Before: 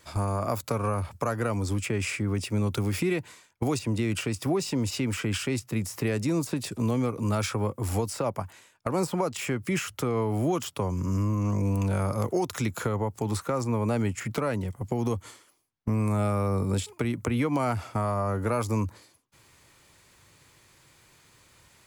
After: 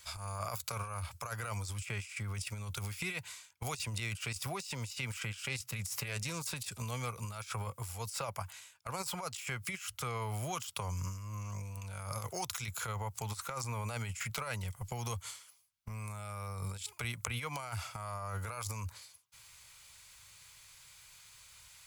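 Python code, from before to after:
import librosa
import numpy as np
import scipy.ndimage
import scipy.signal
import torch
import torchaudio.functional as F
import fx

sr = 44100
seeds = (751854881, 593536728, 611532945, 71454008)

y = fx.doppler_dist(x, sr, depth_ms=0.16, at=(5.26, 6.41))
y = fx.tone_stack(y, sr, knobs='10-0-10')
y = fx.notch(y, sr, hz=1800.0, q=11.0)
y = fx.over_compress(y, sr, threshold_db=-41.0, ratio=-0.5)
y = y * librosa.db_to_amplitude(2.5)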